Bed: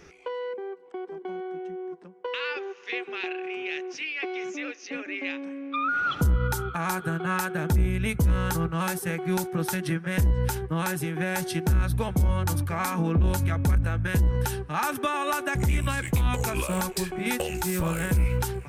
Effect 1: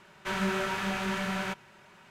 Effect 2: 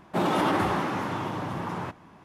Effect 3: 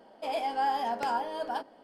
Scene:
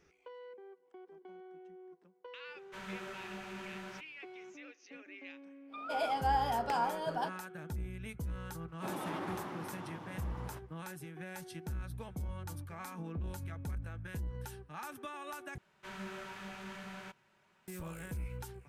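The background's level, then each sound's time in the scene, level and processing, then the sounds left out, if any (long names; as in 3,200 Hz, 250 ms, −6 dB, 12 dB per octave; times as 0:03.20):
bed −17.5 dB
0:02.47: mix in 1 −15 dB
0:05.67: mix in 3 −2.5 dB, fades 0.10 s
0:08.68: mix in 2 −16 dB
0:15.58: overwrite with 1 −15 dB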